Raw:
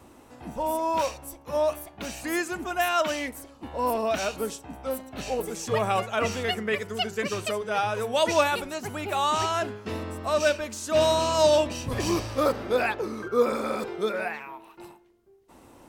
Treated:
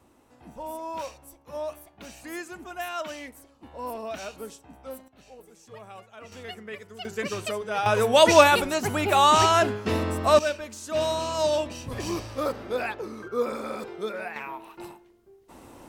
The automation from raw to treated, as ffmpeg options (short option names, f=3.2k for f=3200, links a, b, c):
-af "asetnsamples=n=441:p=0,asendcmd='5.08 volume volume -19.5dB;6.32 volume volume -11.5dB;7.05 volume volume -1.5dB;7.86 volume volume 7dB;10.39 volume volume -4.5dB;14.36 volume volume 4dB',volume=-8.5dB"